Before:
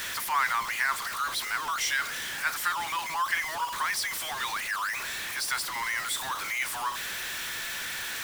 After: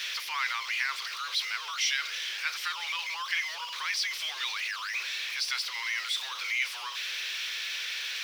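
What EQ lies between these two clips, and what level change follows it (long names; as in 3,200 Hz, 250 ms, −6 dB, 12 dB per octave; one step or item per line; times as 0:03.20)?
Chebyshev high-pass with heavy ripple 360 Hz, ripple 6 dB
flat-topped bell 3,600 Hz +15.5 dB
−7.0 dB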